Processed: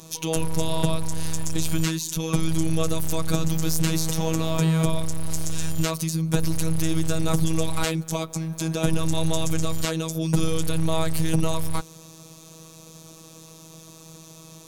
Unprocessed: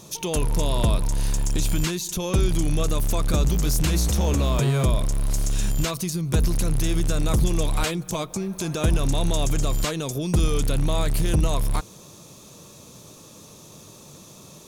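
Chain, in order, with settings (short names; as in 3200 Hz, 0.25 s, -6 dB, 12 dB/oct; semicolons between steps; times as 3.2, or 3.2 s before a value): robotiser 161 Hz; gain +2 dB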